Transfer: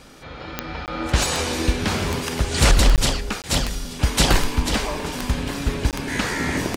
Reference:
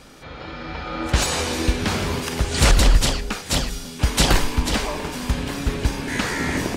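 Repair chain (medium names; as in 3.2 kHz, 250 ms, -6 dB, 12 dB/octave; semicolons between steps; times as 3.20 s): de-click; interpolate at 0.86/2.96/3.42/5.91 s, 18 ms; inverse comb 880 ms -19.5 dB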